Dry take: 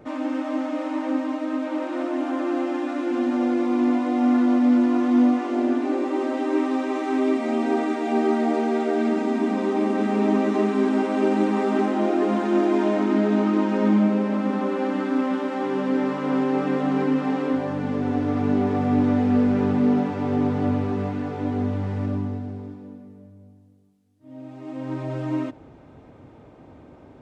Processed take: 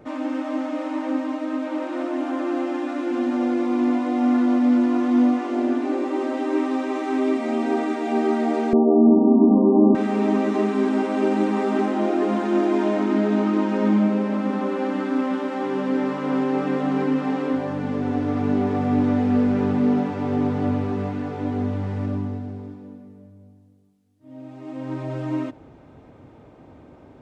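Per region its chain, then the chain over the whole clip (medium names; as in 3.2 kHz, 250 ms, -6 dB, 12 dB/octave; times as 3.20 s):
8.73–9.95 s: brick-wall FIR low-pass 1.2 kHz + tilt EQ -4.5 dB/octave
whole clip: none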